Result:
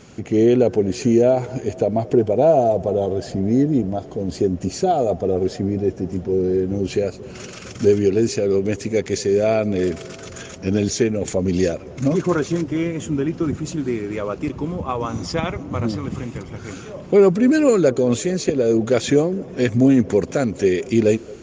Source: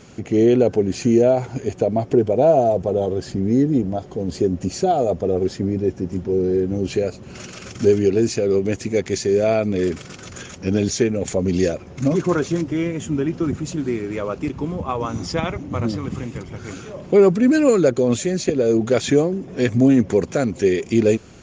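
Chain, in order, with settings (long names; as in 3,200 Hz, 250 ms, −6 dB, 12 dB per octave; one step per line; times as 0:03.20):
delay with a band-pass on its return 226 ms, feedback 73%, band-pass 630 Hz, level −21 dB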